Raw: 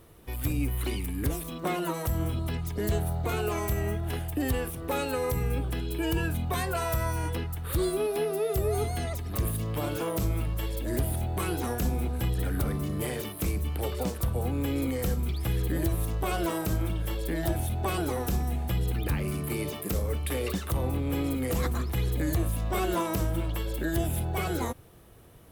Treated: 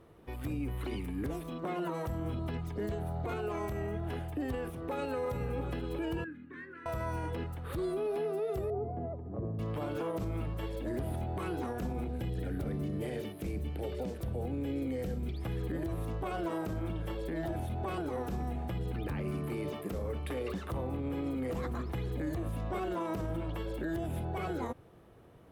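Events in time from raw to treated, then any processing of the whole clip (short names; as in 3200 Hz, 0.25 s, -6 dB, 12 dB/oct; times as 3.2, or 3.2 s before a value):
4.7–5.25 echo throw 0.35 s, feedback 75%, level -12 dB
6.24–6.86 double band-pass 710 Hz, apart 2.6 oct
8.7–9.59 Chebyshev band-pass 100–640 Hz
12.06–15.42 bell 1100 Hz -11 dB 0.74 oct
whole clip: LPF 1300 Hz 6 dB/oct; low shelf 94 Hz -11 dB; limiter -27.5 dBFS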